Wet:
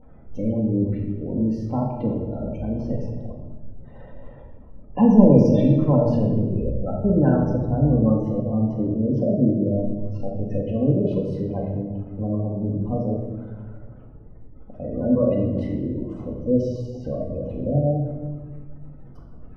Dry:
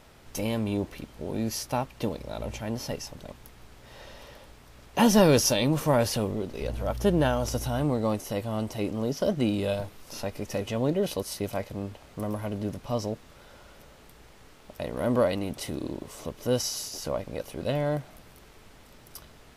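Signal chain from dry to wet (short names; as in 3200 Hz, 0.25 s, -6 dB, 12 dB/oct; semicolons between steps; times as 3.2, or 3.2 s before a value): spectral gate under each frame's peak -15 dB strong; LPF 1900 Hz 12 dB/oct; low shelf 490 Hz +10 dB; shoebox room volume 970 m³, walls mixed, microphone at 2 m; gain -5 dB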